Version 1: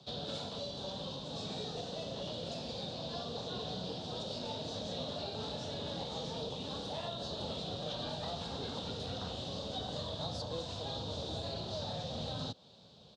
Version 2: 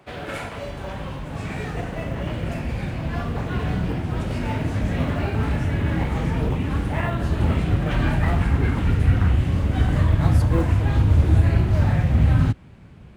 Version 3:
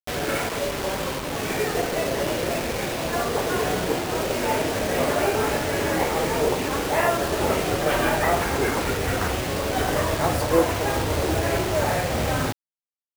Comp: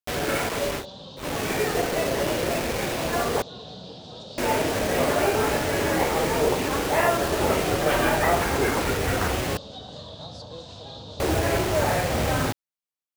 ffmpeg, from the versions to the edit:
-filter_complex "[0:a]asplit=3[s0][s1][s2];[2:a]asplit=4[s3][s4][s5][s6];[s3]atrim=end=0.86[s7];[s0]atrim=start=0.76:end=1.26[s8];[s4]atrim=start=1.16:end=3.422[s9];[s1]atrim=start=3.418:end=4.382[s10];[s5]atrim=start=4.378:end=9.572[s11];[s2]atrim=start=9.568:end=11.202[s12];[s6]atrim=start=11.198[s13];[s7][s8]acrossfade=d=0.1:c1=tri:c2=tri[s14];[s14][s9]acrossfade=d=0.1:c1=tri:c2=tri[s15];[s15][s10]acrossfade=d=0.004:c1=hsin:c2=hsin[s16];[s16][s11]acrossfade=d=0.004:c1=hsin:c2=hsin[s17];[s17][s12]acrossfade=d=0.004:c1=hsin:c2=hsin[s18];[s18][s13]acrossfade=d=0.004:c1=hsin:c2=hsin"

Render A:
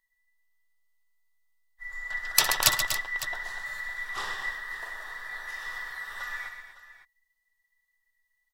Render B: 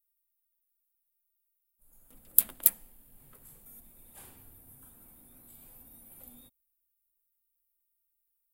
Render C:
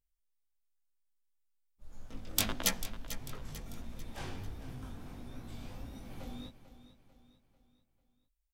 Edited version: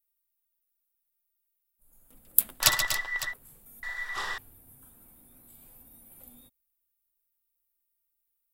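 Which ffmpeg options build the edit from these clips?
-filter_complex "[0:a]asplit=2[s0][s1];[1:a]asplit=3[s2][s3][s4];[s2]atrim=end=2.64[s5];[s0]atrim=start=2.6:end=3.34[s6];[s3]atrim=start=3.3:end=3.832[s7];[s1]atrim=start=3.828:end=4.382[s8];[s4]atrim=start=4.378[s9];[s5][s6]acrossfade=d=0.04:c1=tri:c2=tri[s10];[s10][s7]acrossfade=d=0.04:c1=tri:c2=tri[s11];[s11][s8]acrossfade=d=0.004:c1=hsin:c2=hsin[s12];[s12][s9]acrossfade=d=0.004:c1=hsin:c2=hsin"

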